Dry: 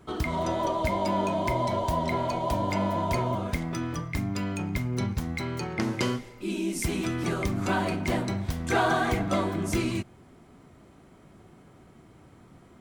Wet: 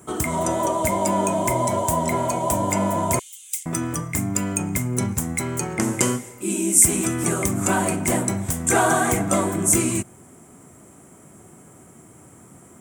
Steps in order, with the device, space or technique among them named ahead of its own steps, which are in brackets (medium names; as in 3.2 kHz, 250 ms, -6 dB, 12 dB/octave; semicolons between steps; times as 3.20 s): budget condenser microphone (high-pass 92 Hz; resonant high shelf 5.9 kHz +11.5 dB, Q 3); 3.19–3.66 s: steep high-pass 2.8 kHz 36 dB/octave; trim +5.5 dB